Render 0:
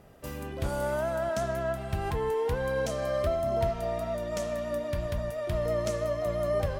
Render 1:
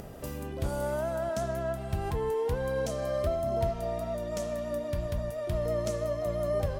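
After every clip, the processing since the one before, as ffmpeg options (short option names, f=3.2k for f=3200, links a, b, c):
-af "equalizer=f=1.9k:t=o:w=2.3:g=-5,acompressor=mode=upward:threshold=-33dB:ratio=2.5"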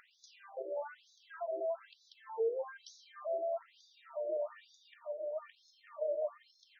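-af "tiltshelf=f=770:g=4,alimiter=level_in=1dB:limit=-24dB:level=0:latency=1:release=101,volume=-1dB,afftfilt=real='re*between(b*sr/1024,480*pow(4900/480,0.5+0.5*sin(2*PI*1.1*pts/sr))/1.41,480*pow(4900/480,0.5+0.5*sin(2*PI*1.1*pts/sr))*1.41)':imag='im*between(b*sr/1024,480*pow(4900/480,0.5+0.5*sin(2*PI*1.1*pts/sr))/1.41,480*pow(4900/480,0.5+0.5*sin(2*PI*1.1*pts/sr))*1.41)':win_size=1024:overlap=0.75"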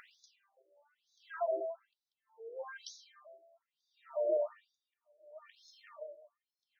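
-af "aeval=exprs='val(0)*pow(10,-37*(0.5-0.5*cos(2*PI*0.7*n/s))/20)':c=same,volume=6dB"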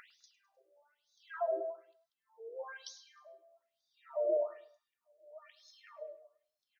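-af "aecho=1:1:103|206|309:0.112|0.0482|0.0207"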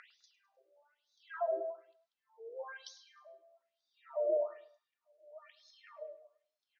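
-af "highpass=310,lowpass=5.1k"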